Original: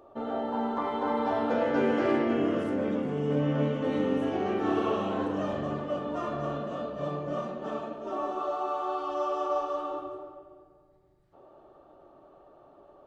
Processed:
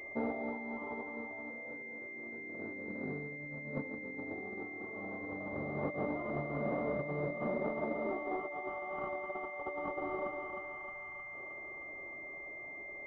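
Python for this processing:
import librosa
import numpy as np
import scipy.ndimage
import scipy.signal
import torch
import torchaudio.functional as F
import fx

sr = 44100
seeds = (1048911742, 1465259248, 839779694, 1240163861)

y = fx.tilt_eq(x, sr, slope=4.0, at=(8.7, 9.6))
y = fx.echo_thinned(y, sr, ms=311, feedback_pct=79, hz=610.0, wet_db=-5.5)
y = fx.over_compress(y, sr, threshold_db=-34.0, ratio=-0.5)
y = fx.air_absorb(y, sr, metres=200.0)
y = fx.pwm(y, sr, carrier_hz=2100.0)
y = y * 10.0 ** (-3.5 / 20.0)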